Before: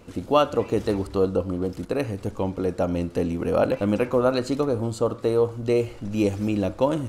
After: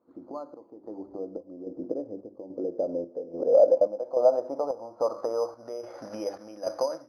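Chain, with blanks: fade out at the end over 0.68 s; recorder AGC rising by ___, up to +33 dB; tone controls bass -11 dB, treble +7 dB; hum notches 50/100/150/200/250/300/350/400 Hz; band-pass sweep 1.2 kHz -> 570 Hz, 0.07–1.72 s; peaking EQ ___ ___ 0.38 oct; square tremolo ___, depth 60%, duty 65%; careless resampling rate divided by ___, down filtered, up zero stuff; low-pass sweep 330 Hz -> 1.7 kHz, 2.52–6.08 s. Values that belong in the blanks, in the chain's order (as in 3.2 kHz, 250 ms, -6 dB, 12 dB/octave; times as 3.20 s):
54 dB/s, 420 Hz, -9.5 dB, 1.2 Hz, 8×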